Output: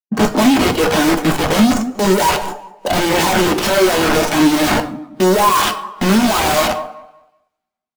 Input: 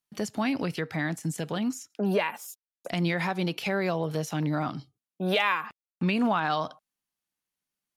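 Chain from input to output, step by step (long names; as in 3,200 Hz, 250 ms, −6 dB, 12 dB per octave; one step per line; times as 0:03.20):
stylus tracing distortion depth 0.15 ms
low-pass filter 3,000 Hz 6 dB per octave
flat-topped bell 570 Hz +10 dB 2.9 octaves
in parallel at −1 dB: brickwall limiter −14.5 dBFS, peak gain reduction 8 dB
on the sum: leveller curve on the samples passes 5
automatic gain control gain up to 5 dB
on a send: repeating echo 189 ms, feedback 41%, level −16.5 dB
on the sum: wrap-around overflow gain 6.5 dB
coupled-rooms reverb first 0.58 s, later 2.8 s, from −26 dB, DRR 5.5 dB
every bin expanded away from the loudest bin 1.5 to 1
level −2 dB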